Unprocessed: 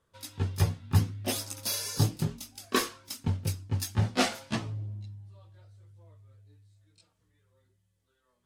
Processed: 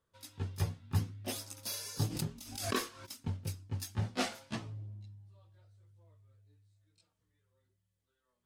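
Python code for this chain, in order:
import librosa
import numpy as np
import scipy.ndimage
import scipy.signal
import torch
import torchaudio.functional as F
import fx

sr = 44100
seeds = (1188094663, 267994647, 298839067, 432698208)

y = fx.pre_swell(x, sr, db_per_s=66.0, at=(2.05, 3.05), fade=0.02)
y = y * 10.0 ** (-8.0 / 20.0)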